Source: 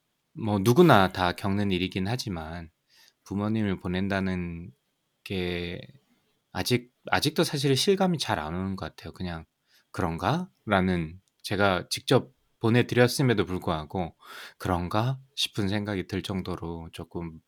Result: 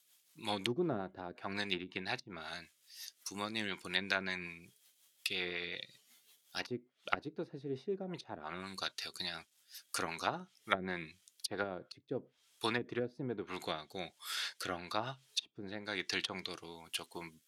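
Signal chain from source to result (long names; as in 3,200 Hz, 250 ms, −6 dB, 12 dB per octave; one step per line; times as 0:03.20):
first difference
treble cut that deepens with the level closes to 400 Hz, closed at −36 dBFS
rotating-speaker cabinet horn 5.5 Hz, later 1.1 Hz, at 0:10.63
level +14.5 dB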